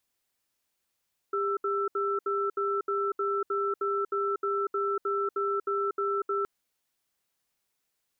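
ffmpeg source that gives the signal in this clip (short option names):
-f lavfi -i "aevalsrc='0.0376*(sin(2*PI*400*t)+sin(2*PI*1330*t))*clip(min(mod(t,0.31),0.24-mod(t,0.31))/0.005,0,1)':d=5.12:s=44100"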